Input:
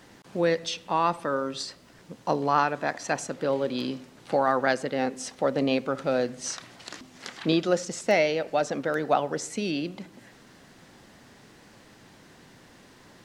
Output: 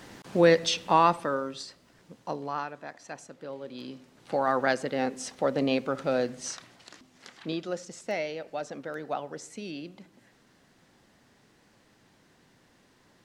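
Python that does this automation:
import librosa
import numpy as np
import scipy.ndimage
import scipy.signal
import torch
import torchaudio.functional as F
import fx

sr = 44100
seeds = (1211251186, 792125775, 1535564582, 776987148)

y = fx.gain(x, sr, db=fx.line((0.95, 4.5), (1.63, -6.5), (2.14, -6.5), (2.88, -13.5), (3.59, -13.5), (4.56, -1.5), (6.35, -1.5), (6.93, -9.5)))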